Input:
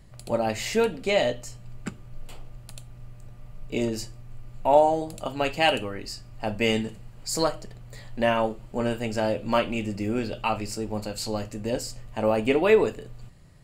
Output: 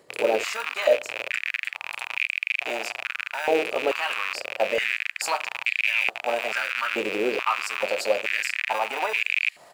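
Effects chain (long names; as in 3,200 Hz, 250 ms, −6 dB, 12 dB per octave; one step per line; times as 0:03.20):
loose part that buzzes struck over −43 dBFS, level −17 dBFS
brickwall limiter −16.5 dBFS, peak gain reduction 10 dB
reversed playback
upward compression, threshold −31 dBFS
reversed playback
tempo change 1.4×
in parallel at −11 dB: decimation without filtering 41×
on the sum: high-pass on a step sequencer 2.3 Hz 440–2,300 Hz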